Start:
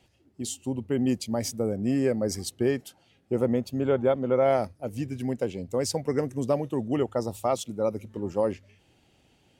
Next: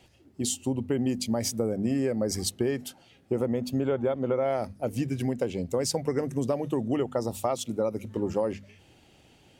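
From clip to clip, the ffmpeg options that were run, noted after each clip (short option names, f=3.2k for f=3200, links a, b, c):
-filter_complex "[0:a]bandreject=f=50:t=h:w=6,bandreject=f=100:t=h:w=6,bandreject=f=150:t=h:w=6,bandreject=f=200:t=h:w=6,bandreject=f=250:t=h:w=6,asplit=2[a][b];[b]alimiter=limit=-22dB:level=0:latency=1:release=243,volume=-1dB[c];[a][c]amix=inputs=2:normalize=0,acompressor=threshold=-23dB:ratio=6"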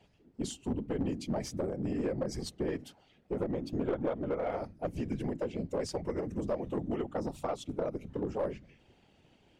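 -af "afftfilt=real='hypot(re,im)*cos(2*PI*random(0))':imag='hypot(re,im)*sin(2*PI*random(1))':win_size=512:overlap=0.75,aeval=exprs='clip(val(0),-1,0.0376)':c=same,aemphasis=mode=reproduction:type=50fm"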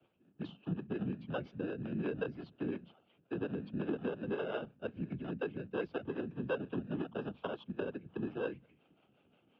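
-filter_complex "[0:a]acrossover=split=340|410|2400[a][b][c][d];[c]acrusher=samples=20:mix=1:aa=0.000001[e];[a][b][e][d]amix=inputs=4:normalize=0,acrossover=split=410[f][g];[f]aeval=exprs='val(0)*(1-0.7/2+0.7/2*cos(2*PI*5.6*n/s))':c=same[h];[g]aeval=exprs='val(0)*(1-0.7/2-0.7/2*cos(2*PI*5.6*n/s))':c=same[i];[h][i]amix=inputs=2:normalize=0,highpass=f=220:t=q:w=0.5412,highpass=f=220:t=q:w=1.307,lowpass=f=3.2k:t=q:w=0.5176,lowpass=f=3.2k:t=q:w=0.7071,lowpass=f=3.2k:t=q:w=1.932,afreqshift=-73,volume=1dB"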